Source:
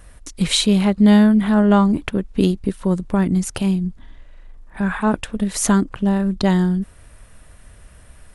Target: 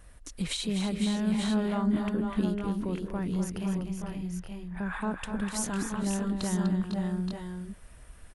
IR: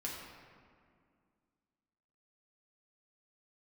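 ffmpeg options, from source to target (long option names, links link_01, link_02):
-filter_complex "[0:a]alimiter=limit=-14dB:level=0:latency=1:release=139,asettb=1/sr,asplit=3[link_01][link_02][link_03];[link_01]atrim=end=2.664[link_04];[link_02]atrim=start=2.66:end=4.93,asetpts=PTS-STARTPTS,afade=type=in:duration=0.004:curve=qsin,afade=type=out:start_time=2.266:duration=0.004:curve=qsin,equalizer=frequency=250:width_type=o:width=0.33:gain=-10,equalizer=frequency=4000:width_type=o:width=0.33:gain=-6,equalizer=frequency=8000:width_type=o:width=0.33:gain=-9[link_05];[link_03]atrim=start=4.926[link_06];[link_04][link_05]acrossfade=duration=0.004:curve1=hsin:curve2=qsin[link_07];[link_07][link_06]acrossfade=duration=0.004:curve1=qsin:curve2=hsin,aecho=1:1:248|501|523|874|898:0.398|0.398|0.355|0.335|0.422,volume=-8.5dB"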